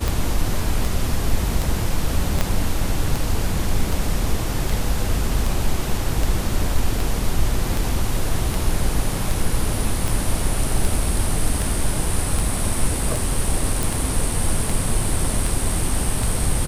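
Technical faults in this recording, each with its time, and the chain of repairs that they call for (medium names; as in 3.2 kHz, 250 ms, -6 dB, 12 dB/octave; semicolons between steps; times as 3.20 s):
tick 78 rpm
2.41 s: pop -5 dBFS
13.83 s: pop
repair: de-click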